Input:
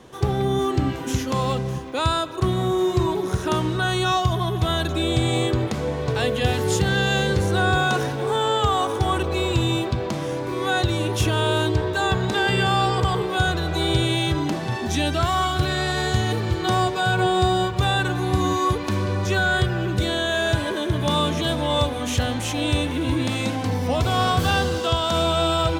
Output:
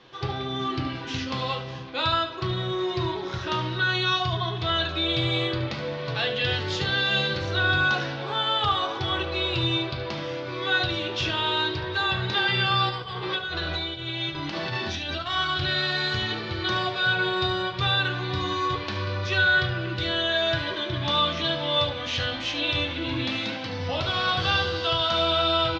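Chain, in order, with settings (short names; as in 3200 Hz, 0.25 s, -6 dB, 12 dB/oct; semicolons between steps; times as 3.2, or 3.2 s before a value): 12.89–15.3 negative-ratio compressor -25 dBFS, ratio -0.5; steep low-pass 4800 Hz 36 dB/oct; tilt shelf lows -7.5 dB, about 1100 Hz; echo 73 ms -12 dB; reverb RT60 0.25 s, pre-delay 6 ms, DRR 2.5 dB; gain -5 dB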